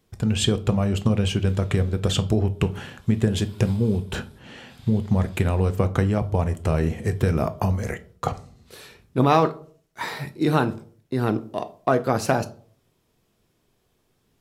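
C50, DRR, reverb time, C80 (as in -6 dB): 18.0 dB, 10.0 dB, 0.50 s, 23.0 dB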